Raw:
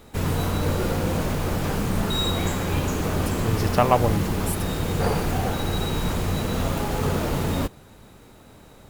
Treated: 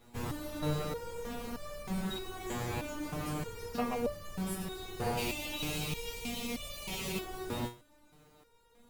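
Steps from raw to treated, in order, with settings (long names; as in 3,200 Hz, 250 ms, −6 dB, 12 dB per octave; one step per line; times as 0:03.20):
0:05.17–0:07.19: high shelf with overshoot 2,000 Hz +7.5 dB, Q 3
step-sequenced resonator 3.2 Hz 120–590 Hz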